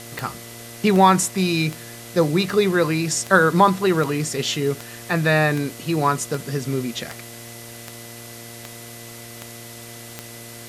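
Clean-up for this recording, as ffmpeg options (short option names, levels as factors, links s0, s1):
-af "adeclick=t=4,bandreject=f=117:t=h:w=4,bandreject=f=234:t=h:w=4,bandreject=f=351:t=h:w=4,bandreject=f=468:t=h:w=4,bandreject=f=585:t=h:w=4,bandreject=f=702:t=h:w=4,bandreject=f=2000:w=30,afftdn=nr=27:nf=-39"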